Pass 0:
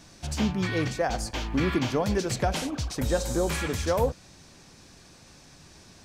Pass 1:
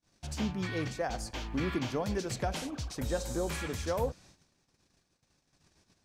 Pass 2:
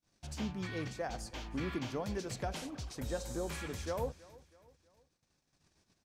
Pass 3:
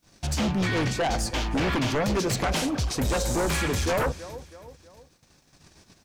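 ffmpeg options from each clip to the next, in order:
-af "agate=range=0.0282:threshold=0.00355:ratio=16:detection=peak,volume=0.447"
-af "aecho=1:1:323|646|969:0.0891|0.0419|0.0197,volume=0.562"
-af "aeval=exprs='0.0631*sin(PI/2*3.55*val(0)/0.0631)':c=same,volume=1.41"

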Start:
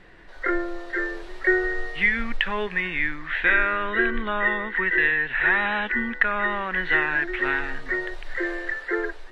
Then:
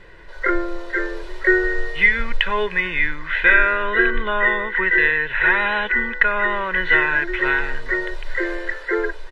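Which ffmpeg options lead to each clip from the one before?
-af "aecho=1:1:2:0.58,volume=1.5"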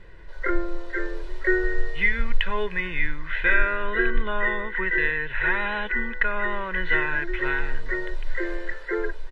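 -af "lowshelf=f=220:g=9.5,volume=0.422"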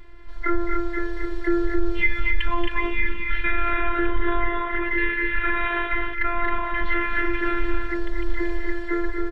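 -af "aecho=1:1:230.3|268.2:0.355|0.501,afftfilt=real='hypot(re,im)*cos(PI*b)':imag='0':win_size=512:overlap=0.75,alimiter=level_in=4.22:limit=0.891:release=50:level=0:latency=1,volume=0.376"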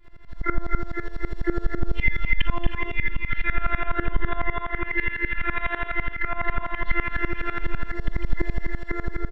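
-filter_complex "[0:a]asplit=2[s0][s1];[s1]aecho=0:1:45|57:0.355|0.251[s2];[s0][s2]amix=inputs=2:normalize=0,aeval=exprs='val(0)*pow(10,-19*if(lt(mod(-12*n/s,1),2*abs(-12)/1000),1-mod(-12*n/s,1)/(2*abs(-12)/1000),(mod(-12*n/s,1)-2*abs(-12)/1000)/(1-2*abs(-12)/1000))/20)':c=same,volume=1.33"

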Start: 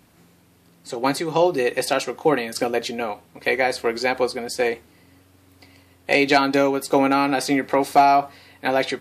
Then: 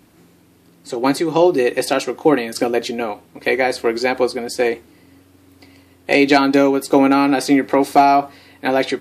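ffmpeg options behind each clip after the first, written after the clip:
-af "equalizer=f=320:t=o:w=0.71:g=7,volume=1.26"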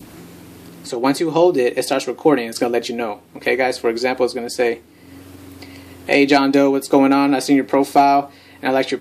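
-af "acompressor=mode=upward:threshold=0.0447:ratio=2.5,adynamicequalizer=threshold=0.0282:dfrequency=1500:dqfactor=1.1:tfrequency=1500:tqfactor=1.1:attack=5:release=100:ratio=0.375:range=2.5:mode=cutabove:tftype=bell"

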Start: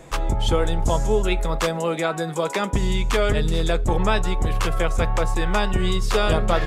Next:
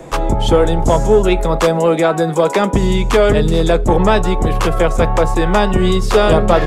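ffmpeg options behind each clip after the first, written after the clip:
-filter_complex "[0:a]acrossover=split=150|1000|4000[s0][s1][s2][s3];[s1]acontrast=89[s4];[s0][s4][s2][s3]amix=inputs=4:normalize=0,asoftclip=type=tanh:threshold=0.562,volume=1.78"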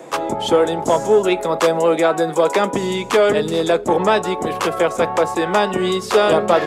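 -af "highpass=270,volume=0.841"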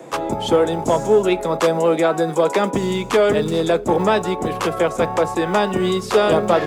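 -filter_complex "[0:a]lowshelf=f=200:g=9.5,acrossover=split=140[s0][s1];[s0]acrusher=samples=36:mix=1:aa=0.000001[s2];[s2][s1]amix=inputs=2:normalize=0,volume=0.75"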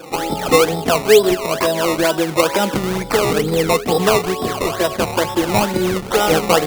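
-af "afftfilt=real='re*pow(10,12/40*sin(2*PI*(1.4*log(max(b,1)*sr/1024/100)/log(2)-(-0.32)*(pts-256)/sr)))':imag='im*pow(10,12/40*sin(2*PI*(1.4*log(max(b,1)*sr/1024/100)/log(2)-(-0.32)*(pts-256)/sr)))':win_size=1024:overlap=0.75,acrusher=samples=19:mix=1:aa=0.000001:lfo=1:lforange=19:lforate=2.2"

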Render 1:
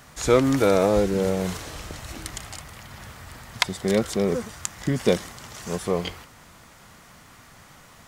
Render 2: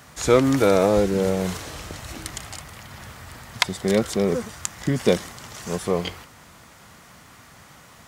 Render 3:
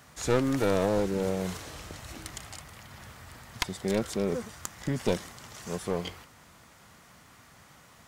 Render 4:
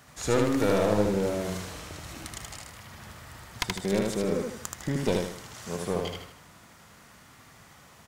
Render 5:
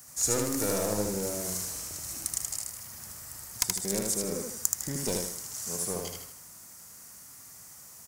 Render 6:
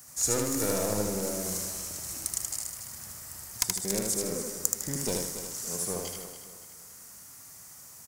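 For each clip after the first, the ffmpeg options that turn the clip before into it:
-af "highpass=49,volume=1.19"
-af "aeval=exprs='clip(val(0),-1,0.0944)':c=same,volume=0.447"
-af "aecho=1:1:77|154|231|308|385:0.708|0.276|0.108|0.042|0.0164"
-af "aexciter=amount=7.9:drive=5:freq=5000,volume=0.473"
-af "aecho=1:1:283|566|849|1132:0.282|0.0958|0.0326|0.0111"

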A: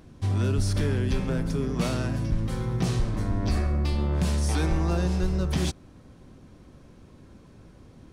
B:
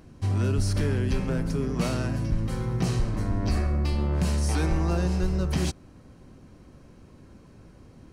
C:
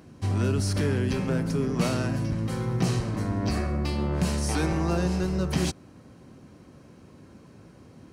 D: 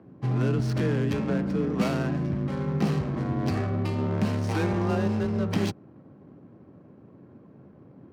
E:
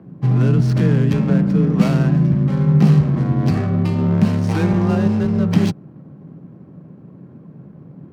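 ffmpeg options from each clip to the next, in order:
-af "bandreject=f=3500:w=9.6"
-af "highpass=100,volume=1.26"
-af "afreqshift=28,adynamicsmooth=sensitivity=7:basefreq=1000"
-af "equalizer=f=160:t=o:w=0.69:g=12.5,volume=1.68"

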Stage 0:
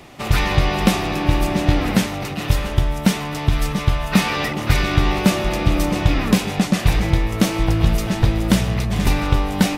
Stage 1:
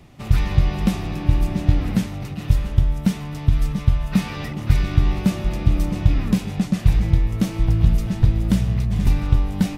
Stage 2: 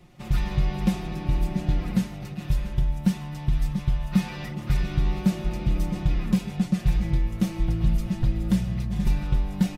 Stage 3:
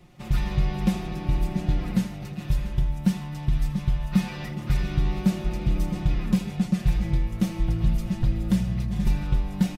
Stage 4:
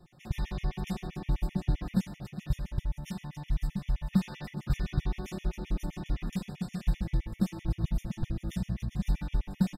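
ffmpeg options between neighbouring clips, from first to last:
-af "bass=f=250:g=13,treble=f=4000:g=1,volume=0.266"
-af "aecho=1:1:5.6:0.74,volume=0.447"
-af "aecho=1:1:81:0.15"
-af "afftfilt=real='re*gt(sin(2*PI*7.7*pts/sr)*(1-2*mod(floor(b*sr/1024/1800),2)),0)':imag='im*gt(sin(2*PI*7.7*pts/sr)*(1-2*mod(floor(b*sr/1024/1800),2)),0)':win_size=1024:overlap=0.75,volume=0.631"

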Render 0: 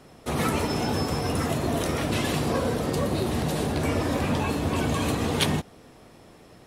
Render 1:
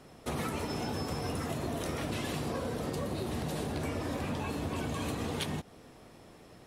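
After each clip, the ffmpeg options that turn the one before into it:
-af "acompressor=threshold=0.0398:ratio=6,volume=0.668"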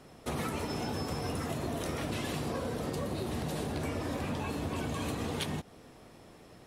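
-af anull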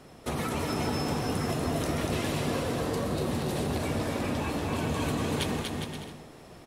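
-af "aecho=1:1:240|408|525.6|607.9|665.5:0.631|0.398|0.251|0.158|0.1,volume=1.41"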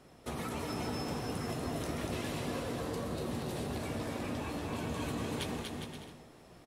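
-filter_complex "[0:a]asplit=2[s0][s1];[s1]adelay=17,volume=0.266[s2];[s0][s2]amix=inputs=2:normalize=0,volume=0.422"

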